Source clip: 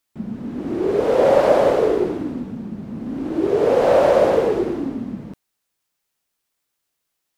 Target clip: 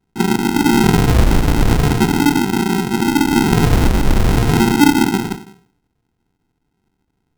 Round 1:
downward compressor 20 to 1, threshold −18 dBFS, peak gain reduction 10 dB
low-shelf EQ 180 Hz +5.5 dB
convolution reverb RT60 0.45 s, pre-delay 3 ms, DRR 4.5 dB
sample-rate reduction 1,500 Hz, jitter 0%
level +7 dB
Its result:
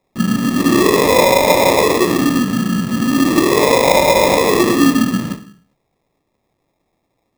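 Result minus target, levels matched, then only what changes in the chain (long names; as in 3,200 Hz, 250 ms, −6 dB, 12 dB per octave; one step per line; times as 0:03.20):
sample-rate reduction: distortion −39 dB
change: sample-rate reduction 580 Hz, jitter 0%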